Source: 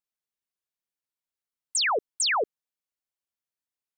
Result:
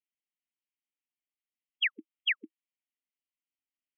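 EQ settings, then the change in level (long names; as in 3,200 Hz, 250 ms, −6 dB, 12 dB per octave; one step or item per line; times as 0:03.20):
linear-phase brick-wall band-pass 200–3,300 Hz
Chebyshev band-stop filter 320–1,900 Hz, order 5
0.0 dB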